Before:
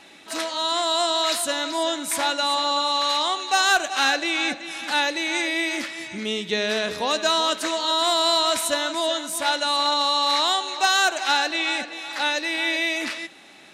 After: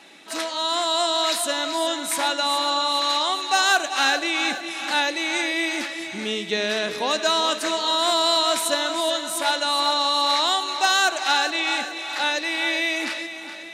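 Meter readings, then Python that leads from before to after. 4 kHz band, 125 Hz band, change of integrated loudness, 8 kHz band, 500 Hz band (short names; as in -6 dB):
+0.5 dB, n/a, +0.5 dB, +0.5 dB, +0.5 dB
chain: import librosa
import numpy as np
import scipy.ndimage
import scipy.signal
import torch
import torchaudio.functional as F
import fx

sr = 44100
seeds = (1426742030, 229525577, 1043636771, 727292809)

p1 = scipy.signal.sosfilt(scipy.signal.butter(2, 150.0, 'highpass', fs=sr, output='sos'), x)
y = p1 + fx.echo_feedback(p1, sr, ms=417, feedback_pct=57, wet_db=-12.0, dry=0)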